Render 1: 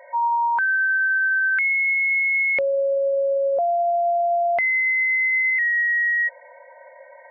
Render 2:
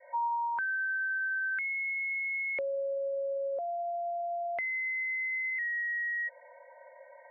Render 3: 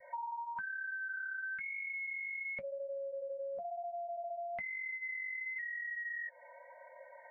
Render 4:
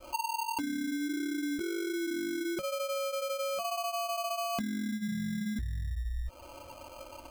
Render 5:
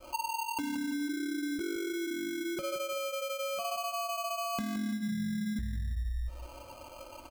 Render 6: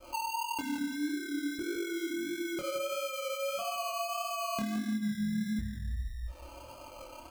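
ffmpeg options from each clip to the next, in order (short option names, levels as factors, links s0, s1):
-filter_complex "[0:a]lowpass=f=2200:p=1,adynamicequalizer=threshold=0.0141:dfrequency=820:dqfactor=1.5:tfrequency=820:tqfactor=1.5:attack=5:release=100:ratio=0.375:range=4:mode=cutabove:tftype=bell,acrossover=split=310|1100[s0][s1][s2];[s0]acompressor=threshold=0.002:ratio=4[s3];[s1]acompressor=threshold=0.0562:ratio=4[s4];[s2]acompressor=threshold=0.0501:ratio=4[s5];[s3][s4][s5]amix=inputs=3:normalize=0,volume=0.447"
-af "flanger=delay=1.7:depth=7.5:regen=-39:speed=1:shape=sinusoidal,lowshelf=f=260:t=q:w=3:g=11,acompressor=threshold=0.00708:ratio=6,volume=1.58"
-af "acrusher=samples=24:mix=1:aa=0.000001,volume=2.24"
-af "aecho=1:1:170|340|510:0.316|0.0949|0.0285,volume=0.891"
-af "flanger=delay=22.5:depth=6.8:speed=1.6,volume=1.41"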